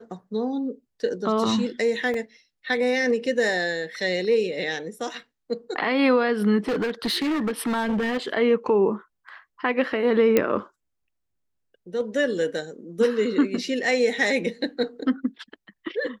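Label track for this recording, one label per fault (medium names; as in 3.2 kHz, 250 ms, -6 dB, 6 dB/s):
2.140000	2.140000	dropout 3 ms
6.680000	8.180000	clipped -21 dBFS
10.370000	10.370000	pop -6 dBFS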